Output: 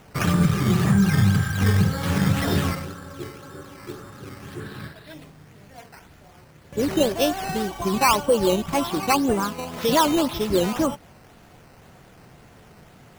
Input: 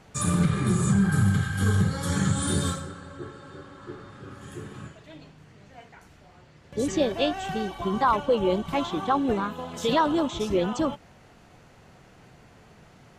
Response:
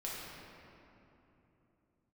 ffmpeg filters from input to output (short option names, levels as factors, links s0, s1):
-filter_complex "[0:a]acrusher=samples=9:mix=1:aa=0.000001:lfo=1:lforange=9:lforate=1.9,asettb=1/sr,asplit=3[s0][s1][s2];[s0]atrim=end=4.604[s3];[s1]atrim=start=4.6:end=5.14,asetpts=PTS-STARTPTS,afade=t=in:d=0.004:c=qsin,afade=t=out:st=0.536:d=0.004:c=qsin,equalizer=f=1600:t=o:w=0.33:g=8,equalizer=f=4000:t=o:w=0.33:g=11,equalizer=f=6300:t=o:w=0.33:g=-11[s4];[s2]atrim=start=5.136[s5];[s3][s4]acrossfade=d=0.004:c1=hsin:c2=qsin[s6];[s6][s5]acrossfade=d=0.004:c1=qsin:c2=hsin,volume=1.5"